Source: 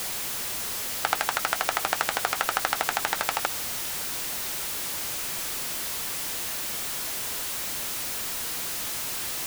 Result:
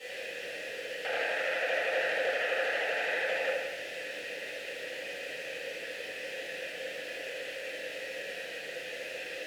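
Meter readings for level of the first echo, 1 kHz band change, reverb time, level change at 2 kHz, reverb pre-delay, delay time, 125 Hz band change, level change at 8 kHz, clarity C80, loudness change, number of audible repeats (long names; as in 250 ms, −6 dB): no echo audible, −11.0 dB, 1.1 s, 0.0 dB, 3 ms, no echo audible, below −10 dB, −21.0 dB, 2.0 dB, −6.5 dB, no echo audible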